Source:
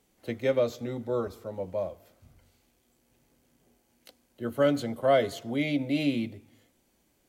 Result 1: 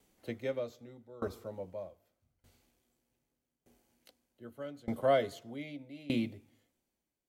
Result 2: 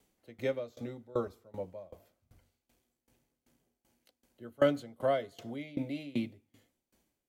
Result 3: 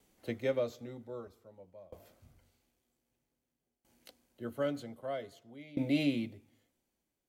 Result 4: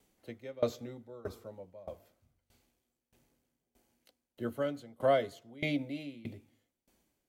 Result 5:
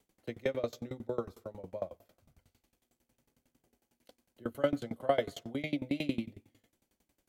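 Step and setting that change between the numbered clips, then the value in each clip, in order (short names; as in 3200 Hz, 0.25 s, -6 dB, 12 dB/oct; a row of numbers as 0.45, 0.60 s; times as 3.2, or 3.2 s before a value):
dB-ramp tremolo, rate: 0.82, 2.6, 0.52, 1.6, 11 Hz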